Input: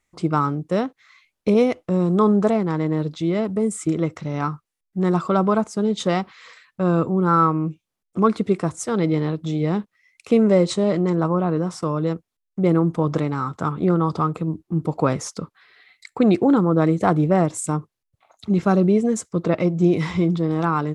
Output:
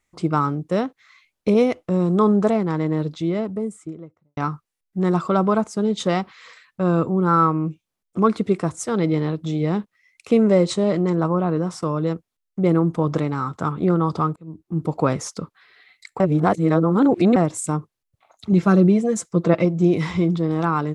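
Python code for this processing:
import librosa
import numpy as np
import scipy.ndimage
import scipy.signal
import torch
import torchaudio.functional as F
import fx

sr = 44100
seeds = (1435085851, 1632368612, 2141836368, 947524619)

y = fx.studio_fade_out(x, sr, start_s=3.01, length_s=1.36)
y = fx.comb(y, sr, ms=5.9, depth=0.56, at=(18.52, 19.65))
y = fx.edit(y, sr, fx.fade_in_span(start_s=14.36, length_s=0.48),
    fx.reverse_span(start_s=16.2, length_s=1.16), tone=tone)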